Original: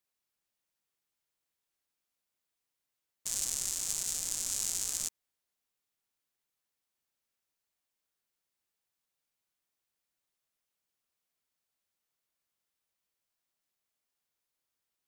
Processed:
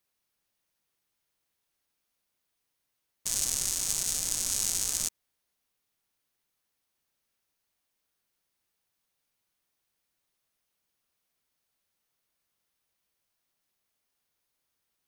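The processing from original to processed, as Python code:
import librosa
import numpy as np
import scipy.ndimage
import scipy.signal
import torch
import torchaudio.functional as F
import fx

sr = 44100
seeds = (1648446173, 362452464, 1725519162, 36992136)

y = fx.low_shelf(x, sr, hz=230.0, db=3.0)
y = fx.notch(y, sr, hz=7400.0, q=12.0)
y = y * 10.0 ** (5.5 / 20.0)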